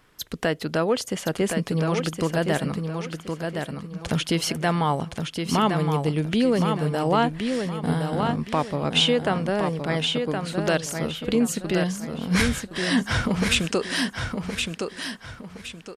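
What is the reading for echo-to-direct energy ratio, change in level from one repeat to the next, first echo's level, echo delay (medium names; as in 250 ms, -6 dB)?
-5.0 dB, -10.0 dB, -5.5 dB, 1067 ms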